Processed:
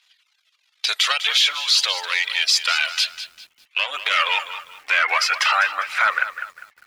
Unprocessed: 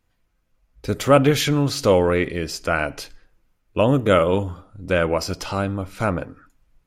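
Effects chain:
gain on one half-wave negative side −7 dB
0:01.12–0:04.11: downward compressor 6 to 1, threshold −22 dBFS, peak gain reduction 10.5 dB
Bessel high-pass filter 1,100 Hz, order 4
soft clipping −27 dBFS, distortion −8 dB
band-pass filter sweep 3,600 Hz → 1,800 Hz, 0:02.57–0:05.80
phase shifter 0.5 Hz, delay 3.1 ms, feedback 28%
reverb reduction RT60 0.62 s
boost into a limiter +35 dB
feedback echo at a low word length 200 ms, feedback 35%, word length 6 bits, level −12 dB
level −7 dB

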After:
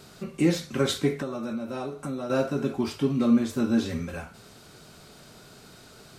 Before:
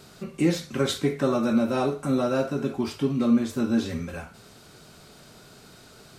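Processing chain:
0:01.15–0:02.30: downward compressor 6 to 1, threshold −30 dBFS, peak gain reduction 12 dB

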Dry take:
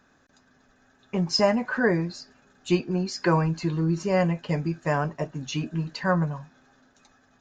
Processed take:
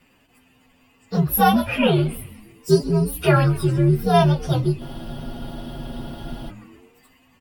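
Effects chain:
partials spread apart or drawn together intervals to 127%
echo with shifted repeats 131 ms, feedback 52%, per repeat −120 Hz, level −16.5 dB
frozen spectrum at 0:04.82, 1.67 s
level +8 dB

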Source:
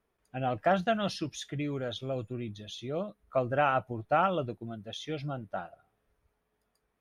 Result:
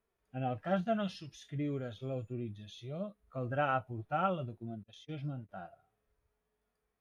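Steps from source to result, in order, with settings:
0:04.83–0:05.49: noise gate −40 dBFS, range −38 dB
harmonic and percussive parts rebalanced percussive −17 dB
level −1.5 dB

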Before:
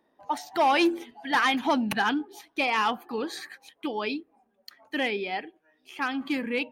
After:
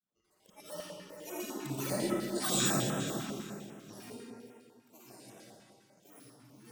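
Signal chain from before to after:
samples in bit-reversed order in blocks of 32 samples
source passing by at 0:02.39, 28 m/s, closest 3.5 metres
low-pass filter 11,000 Hz 24 dB per octave
low-shelf EQ 340 Hz +3 dB
volume swells 215 ms
granular cloud, grains 22 per second, pitch spread up and down by 12 semitones
delay that swaps between a low-pass and a high-pass 217 ms, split 1,700 Hz, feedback 51%, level −7.5 dB
comb and all-pass reverb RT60 2 s, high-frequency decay 0.8×, pre-delay 15 ms, DRR −4.5 dB
notch on a step sequencer 10 Hz 470–4,500 Hz
level +4.5 dB

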